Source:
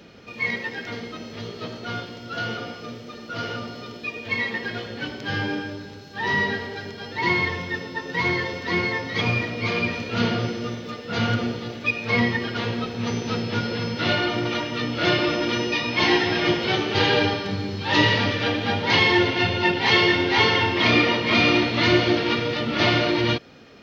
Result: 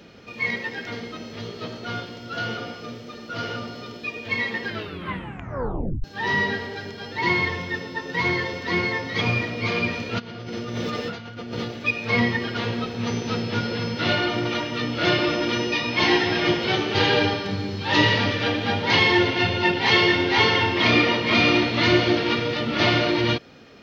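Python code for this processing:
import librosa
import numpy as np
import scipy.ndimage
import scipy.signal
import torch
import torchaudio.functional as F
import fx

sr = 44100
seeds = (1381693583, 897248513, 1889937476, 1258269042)

y = fx.over_compress(x, sr, threshold_db=-34.0, ratio=-1.0, at=(10.18, 11.64), fade=0.02)
y = fx.edit(y, sr, fx.tape_stop(start_s=4.67, length_s=1.37), tone=tone)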